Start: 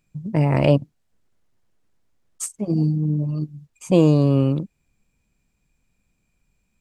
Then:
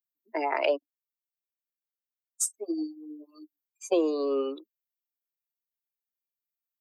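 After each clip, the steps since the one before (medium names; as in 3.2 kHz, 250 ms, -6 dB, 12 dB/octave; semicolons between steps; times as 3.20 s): expander on every frequency bin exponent 2; steep high-pass 320 Hz 72 dB/octave; compression 3:1, threshold -31 dBFS, peak gain reduction 12.5 dB; trim +6 dB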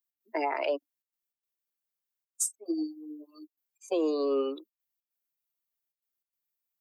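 trance gate "x.xxxxxxxx.x" 147 bpm -12 dB; peak limiter -20 dBFS, peak gain reduction 8 dB; treble shelf 7.6 kHz +5.5 dB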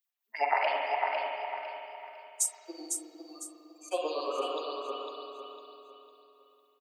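LFO high-pass sine 8.8 Hz 680–3200 Hz; on a send: feedback delay 503 ms, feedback 34%, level -5 dB; on the sum: spring tank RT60 2.6 s, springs 45/49 ms, chirp 25 ms, DRR -1 dB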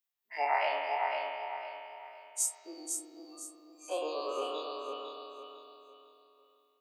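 every event in the spectrogram widened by 60 ms; trim -6.5 dB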